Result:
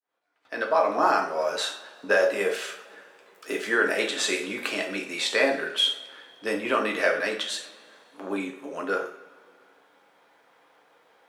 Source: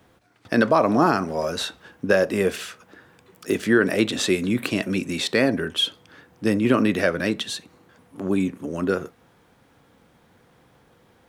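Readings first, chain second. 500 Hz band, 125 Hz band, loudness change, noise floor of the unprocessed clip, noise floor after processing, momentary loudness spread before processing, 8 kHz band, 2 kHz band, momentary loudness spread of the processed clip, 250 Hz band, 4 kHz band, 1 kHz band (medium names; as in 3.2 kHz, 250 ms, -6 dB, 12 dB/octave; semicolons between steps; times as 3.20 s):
-3.0 dB, under -20 dB, -3.5 dB, -58 dBFS, -62 dBFS, 12 LU, -1.0 dB, +0.5 dB, 13 LU, -12.0 dB, -0.5 dB, -0.5 dB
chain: fade-in on the opening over 1.22 s; high-pass 640 Hz 12 dB/octave; treble shelf 4 kHz -10 dB; two-slope reverb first 0.44 s, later 2.3 s, from -20 dB, DRR 0.5 dB; dynamic bell 7.8 kHz, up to +6 dB, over -45 dBFS, Q 1.3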